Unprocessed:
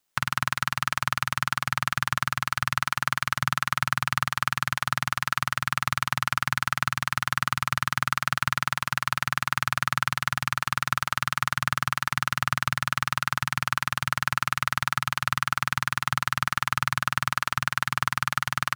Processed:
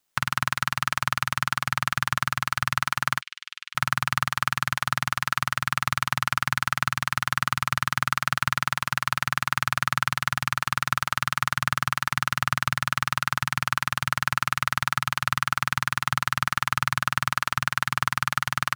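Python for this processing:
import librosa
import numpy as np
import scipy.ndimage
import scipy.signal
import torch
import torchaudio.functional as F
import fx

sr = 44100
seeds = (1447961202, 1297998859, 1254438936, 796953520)

y = fx.ladder_bandpass(x, sr, hz=3400.0, resonance_pct=40, at=(3.21, 3.75))
y = F.gain(torch.from_numpy(y), 1.0).numpy()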